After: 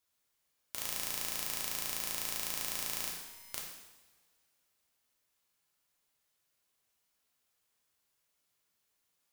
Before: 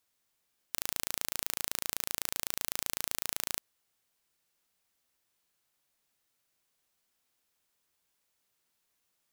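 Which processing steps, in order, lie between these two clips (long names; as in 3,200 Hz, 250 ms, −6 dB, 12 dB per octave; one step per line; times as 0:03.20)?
0:03.09–0:03.53: tuned comb filter 190 Hz, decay 1.2 s, mix 100%
coupled-rooms reverb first 0.99 s, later 3.1 s, from −23 dB, DRR −2.5 dB
level −5.5 dB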